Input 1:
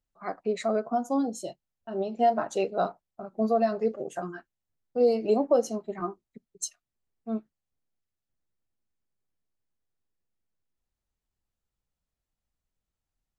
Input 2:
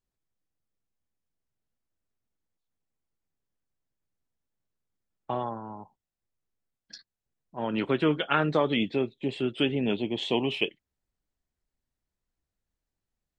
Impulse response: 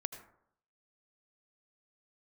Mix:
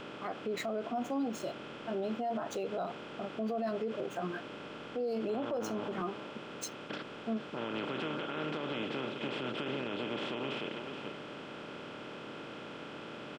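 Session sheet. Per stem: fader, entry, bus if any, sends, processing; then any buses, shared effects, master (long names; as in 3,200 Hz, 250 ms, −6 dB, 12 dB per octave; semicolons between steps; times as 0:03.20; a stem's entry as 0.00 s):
+0.5 dB, 0.00 s, no send, no echo send, running median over 5 samples
−15.0 dB, 0.00 s, no send, echo send −11 dB, compressor on every frequency bin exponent 0.2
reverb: not used
echo: single-tap delay 431 ms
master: brickwall limiter −27.5 dBFS, peak gain reduction 16.5 dB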